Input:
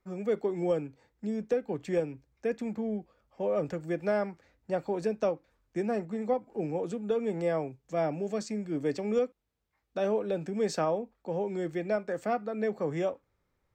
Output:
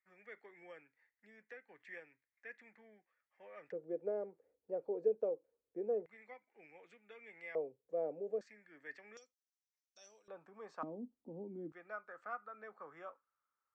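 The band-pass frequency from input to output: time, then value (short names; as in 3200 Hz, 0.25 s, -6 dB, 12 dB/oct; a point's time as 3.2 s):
band-pass, Q 6.4
1900 Hz
from 3.72 s 460 Hz
from 6.06 s 2100 Hz
from 7.55 s 480 Hz
from 8.41 s 1800 Hz
from 9.17 s 5900 Hz
from 10.28 s 1100 Hz
from 10.83 s 260 Hz
from 11.72 s 1300 Hz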